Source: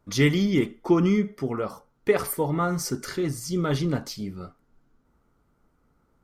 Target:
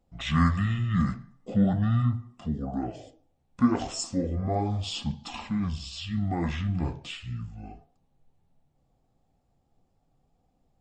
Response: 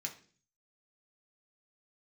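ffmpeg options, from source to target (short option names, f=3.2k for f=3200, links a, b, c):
-af "flanger=delay=2.3:depth=8.3:regen=-56:speed=0.66:shape=sinusoidal,asetrate=25442,aresample=44100,volume=1dB"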